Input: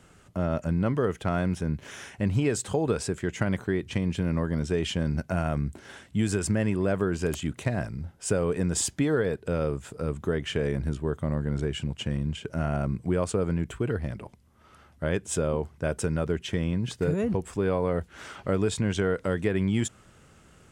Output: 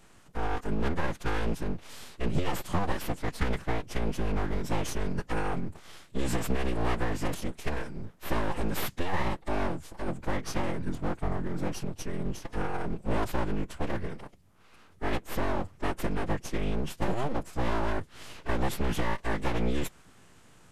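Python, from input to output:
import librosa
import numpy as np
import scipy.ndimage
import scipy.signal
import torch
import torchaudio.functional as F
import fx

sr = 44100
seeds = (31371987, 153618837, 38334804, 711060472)

y = np.abs(x)
y = fx.pitch_keep_formants(y, sr, semitones=-8.5)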